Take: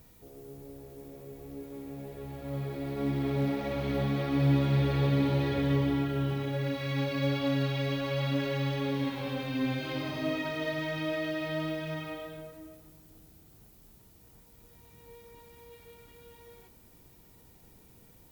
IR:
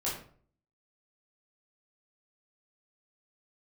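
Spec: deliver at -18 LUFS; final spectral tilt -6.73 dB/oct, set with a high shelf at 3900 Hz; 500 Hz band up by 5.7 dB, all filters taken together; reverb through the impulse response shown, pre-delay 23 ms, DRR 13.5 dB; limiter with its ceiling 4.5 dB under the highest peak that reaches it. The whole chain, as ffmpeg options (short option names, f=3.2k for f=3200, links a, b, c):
-filter_complex "[0:a]equalizer=f=500:t=o:g=7,highshelf=f=3.9k:g=-5,alimiter=limit=-19dB:level=0:latency=1,asplit=2[a][b];[1:a]atrim=start_sample=2205,adelay=23[c];[b][c]afir=irnorm=-1:irlink=0,volume=-18.5dB[d];[a][d]amix=inputs=2:normalize=0,volume=11.5dB"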